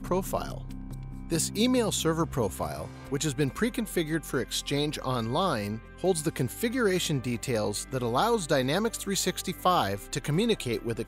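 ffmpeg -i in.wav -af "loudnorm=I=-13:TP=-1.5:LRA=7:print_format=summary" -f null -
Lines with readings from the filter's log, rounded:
Input Integrated:    -28.4 LUFS
Input True Peak:     -11.6 dBTP
Input LRA:             2.2 LU
Input Threshold:     -38.5 LUFS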